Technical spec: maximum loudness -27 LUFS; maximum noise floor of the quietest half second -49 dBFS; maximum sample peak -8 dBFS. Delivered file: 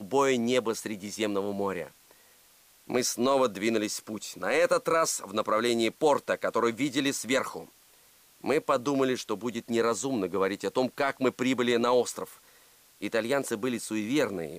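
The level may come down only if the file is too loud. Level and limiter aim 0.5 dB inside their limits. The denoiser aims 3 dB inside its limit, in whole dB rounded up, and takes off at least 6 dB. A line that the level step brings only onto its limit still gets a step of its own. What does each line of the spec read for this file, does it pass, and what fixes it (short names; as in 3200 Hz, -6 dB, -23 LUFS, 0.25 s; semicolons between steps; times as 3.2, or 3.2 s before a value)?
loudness -28.0 LUFS: OK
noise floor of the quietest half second -60 dBFS: OK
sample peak -14.0 dBFS: OK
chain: none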